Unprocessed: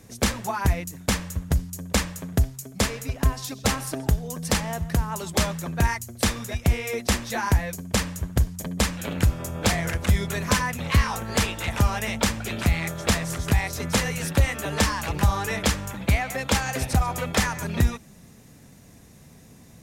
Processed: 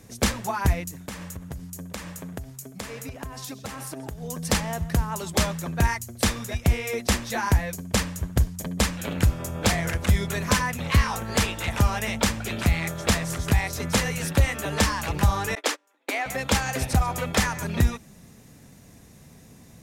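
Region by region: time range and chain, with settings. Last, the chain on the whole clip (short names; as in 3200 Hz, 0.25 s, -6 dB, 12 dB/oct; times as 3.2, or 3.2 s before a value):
1.07–4.22 HPF 110 Hz 6 dB/oct + bell 4500 Hz -3 dB 1.6 oct + compressor 8:1, threshold -31 dBFS
15.55–16.26 steep high-pass 270 Hz 72 dB/oct + high shelf 7700 Hz -5 dB + gate -32 dBFS, range -29 dB
whole clip: dry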